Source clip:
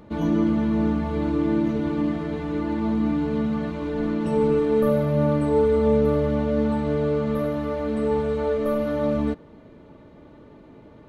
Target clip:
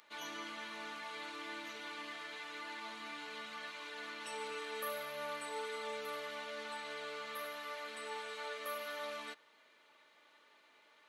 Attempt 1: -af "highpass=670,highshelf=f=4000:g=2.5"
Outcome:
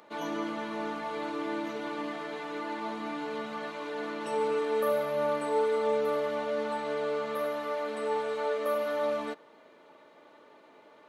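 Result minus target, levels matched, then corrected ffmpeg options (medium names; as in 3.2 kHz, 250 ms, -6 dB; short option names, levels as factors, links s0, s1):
2 kHz band -7.5 dB
-af "highpass=1900,highshelf=f=4000:g=2.5"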